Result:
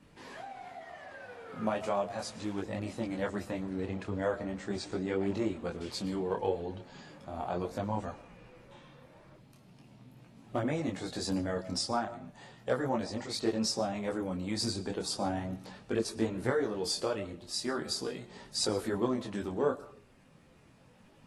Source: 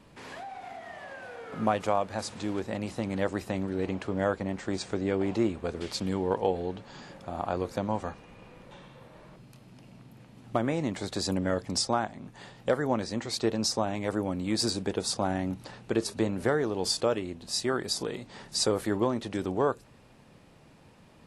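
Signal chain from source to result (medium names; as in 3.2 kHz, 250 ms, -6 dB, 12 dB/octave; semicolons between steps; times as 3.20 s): coarse spectral quantiser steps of 15 dB; algorithmic reverb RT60 0.58 s, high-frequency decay 0.4×, pre-delay 75 ms, DRR 16.5 dB; detune thickener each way 13 cents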